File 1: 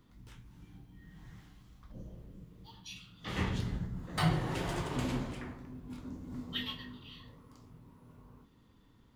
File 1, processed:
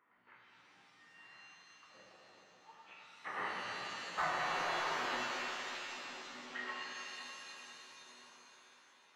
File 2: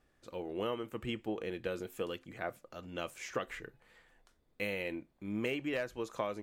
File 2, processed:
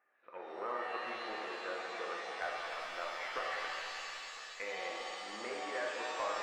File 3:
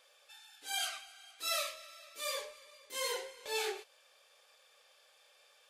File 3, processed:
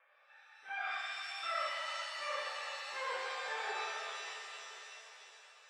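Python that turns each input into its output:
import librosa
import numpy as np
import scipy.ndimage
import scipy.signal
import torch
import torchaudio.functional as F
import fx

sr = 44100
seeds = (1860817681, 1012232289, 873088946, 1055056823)

p1 = fx.schmitt(x, sr, flips_db=-37.0)
p2 = x + (p1 * 10.0 ** (-7.5 / 20.0))
p3 = scipy.signal.sosfilt(scipy.signal.butter(6, 2200.0, 'lowpass', fs=sr, output='sos'), p2)
p4 = fx.env_lowpass_down(p3, sr, base_hz=1600.0, full_db=-35.0)
p5 = fx.wow_flutter(p4, sr, seeds[0], rate_hz=2.1, depth_cents=19.0)
p6 = scipy.signal.sosfilt(scipy.signal.butter(2, 920.0, 'highpass', fs=sr, output='sos'), p5)
p7 = fx.echo_feedback(p6, sr, ms=505, feedback_pct=53, wet_db=-17)
p8 = np.clip(p7, -10.0 ** (-31.5 / 20.0), 10.0 ** (-31.5 / 20.0))
p9 = fx.rev_shimmer(p8, sr, seeds[1], rt60_s=2.8, semitones=7, shimmer_db=-2, drr_db=-1.5)
y = p9 * 10.0 ** (2.0 / 20.0)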